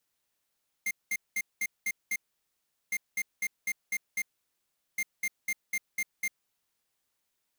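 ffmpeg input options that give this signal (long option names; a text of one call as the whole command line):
ffmpeg -f lavfi -i "aevalsrc='0.0316*(2*lt(mod(2110*t,1),0.5)-1)*clip(min(mod(mod(t,2.06),0.25),0.05-mod(mod(t,2.06),0.25))/0.005,0,1)*lt(mod(t,2.06),1.5)':duration=6.18:sample_rate=44100" out.wav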